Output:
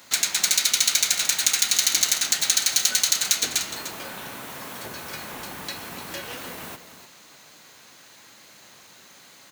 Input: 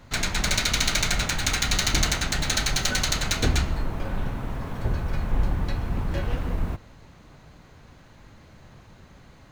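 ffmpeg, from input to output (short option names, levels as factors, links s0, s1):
-filter_complex "[0:a]highpass=260,acompressor=threshold=0.0178:ratio=2,crystalizer=i=8.5:c=0,asplit=2[s0][s1];[s1]aecho=0:1:299:0.266[s2];[s0][s2]amix=inputs=2:normalize=0,volume=0.668"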